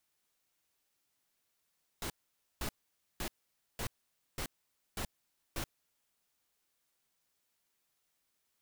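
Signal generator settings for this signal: noise bursts pink, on 0.08 s, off 0.51 s, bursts 7, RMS -37.5 dBFS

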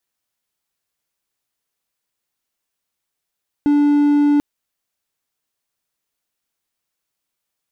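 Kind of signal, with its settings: tone triangle 291 Hz -9 dBFS 0.74 s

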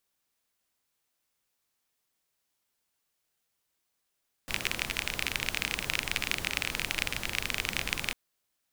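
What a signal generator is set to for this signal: rain from filtered ticks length 3.65 s, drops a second 28, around 2.4 kHz, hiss -5 dB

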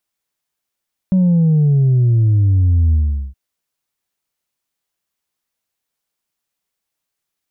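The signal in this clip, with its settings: sub drop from 190 Hz, over 2.22 s, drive 1.5 dB, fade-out 0.41 s, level -10 dB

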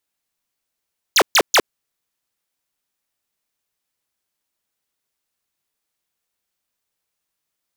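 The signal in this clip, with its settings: burst of laser zaps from 7.5 kHz, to 290 Hz, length 0.06 s square, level -12 dB, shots 3, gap 0.13 s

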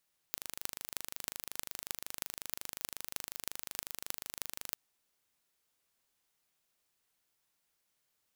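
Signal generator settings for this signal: pulse train 25.5 per s, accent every 8, -7 dBFS 4.41 s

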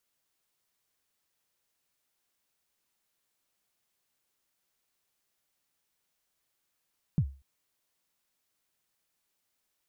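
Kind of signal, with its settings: kick drum length 0.24 s, from 180 Hz, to 68 Hz, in 68 ms, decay 0.33 s, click off, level -18.5 dB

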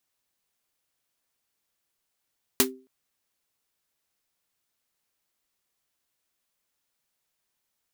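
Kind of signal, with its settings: snare drum length 0.27 s, tones 260 Hz, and 390 Hz, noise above 710 Hz, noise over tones 7.5 dB, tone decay 0.37 s, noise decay 0.12 s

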